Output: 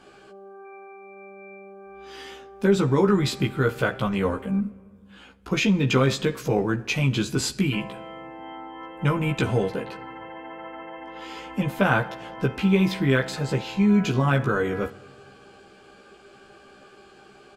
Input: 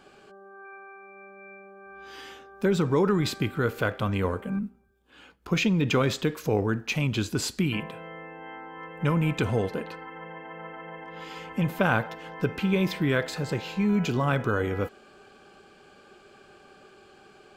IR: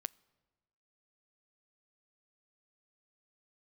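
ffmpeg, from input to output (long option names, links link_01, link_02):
-filter_complex "[0:a]asplit=2[link_01][link_02];[link_02]adelay=15,volume=-2.5dB[link_03];[link_01][link_03]amix=inputs=2:normalize=0[link_04];[1:a]atrim=start_sample=2205,asetrate=22491,aresample=44100[link_05];[link_04][link_05]afir=irnorm=-1:irlink=0"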